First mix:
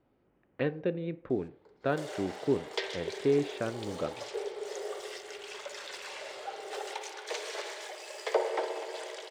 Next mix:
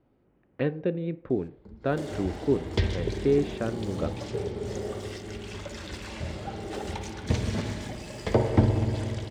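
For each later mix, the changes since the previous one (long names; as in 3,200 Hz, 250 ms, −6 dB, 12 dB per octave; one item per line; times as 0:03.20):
background: remove Butterworth high-pass 380 Hz 72 dB per octave
master: add low-shelf EQ 360 Hz +7 dB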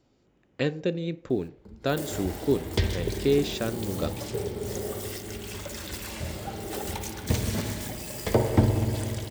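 speech: remove low-pass filter 2,000 Hz 12 dB per octave
master: remove high-frequency loss of the air 97 metres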